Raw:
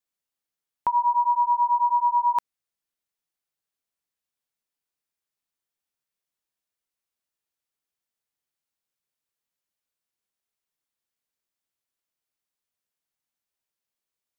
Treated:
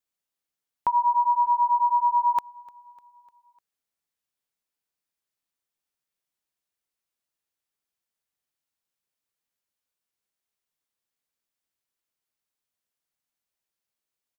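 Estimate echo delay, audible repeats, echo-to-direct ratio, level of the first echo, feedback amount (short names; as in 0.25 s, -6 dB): 0.3 s, 3, -22.0 dB, -23.5 dB, 55%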